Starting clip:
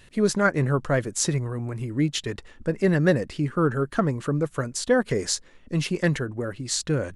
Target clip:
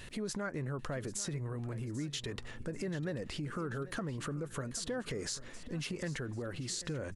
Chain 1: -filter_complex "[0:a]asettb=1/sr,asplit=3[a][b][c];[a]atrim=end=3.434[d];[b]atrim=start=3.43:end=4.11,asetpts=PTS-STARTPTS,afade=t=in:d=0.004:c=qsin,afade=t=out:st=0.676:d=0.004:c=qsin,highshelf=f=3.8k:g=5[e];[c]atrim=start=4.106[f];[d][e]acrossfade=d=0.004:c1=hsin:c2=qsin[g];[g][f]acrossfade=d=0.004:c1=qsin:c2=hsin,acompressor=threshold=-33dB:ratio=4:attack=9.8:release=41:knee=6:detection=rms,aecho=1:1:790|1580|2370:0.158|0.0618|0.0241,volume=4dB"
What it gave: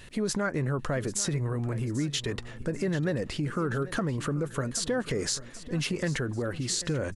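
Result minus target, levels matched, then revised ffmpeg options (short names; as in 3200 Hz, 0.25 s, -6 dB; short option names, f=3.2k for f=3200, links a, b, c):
compressor: peak gain reduction -9 dB
-filter_complex "[0:a]asettb=1/sr,asplit=3[a][b][c];[a]atrim=end=3.434[d];[b]atrim=start=3.43:end=4.11,asetpts=PTS-STARTPTS,afade=t=in:d=0.004:c=qsin,afade=t=out:st=0.676:d=0.004:c=qsin,highshelf=f=3.8k:g=5[e];[c]atrim=start=4.106[f];[d][e]acrossfade=d=0.004:c1=hsin:c2=qsin[g];[g][f]acrossfade=d=0.004:c1=qsin:c2=hsin,acompressor=threshold=-45dB:ratio=4:attack=9.8:release=41:knee=6:detection=rms,aecho=1:1:790|1580|2370:0.158|0.0618|0.0241,volume=4dB"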